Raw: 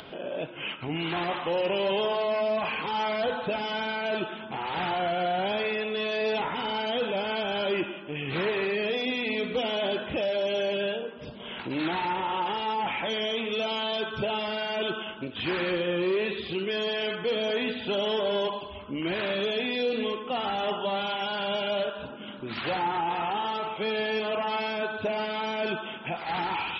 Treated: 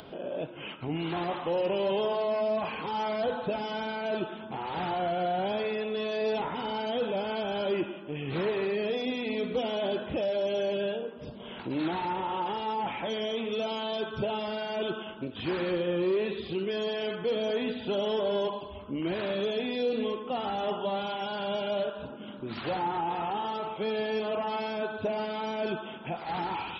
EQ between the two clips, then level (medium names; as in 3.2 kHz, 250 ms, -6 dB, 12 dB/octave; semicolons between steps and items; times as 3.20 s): peaking EQ 2.3 kHz -8 dB 2 oct; 0.0 dB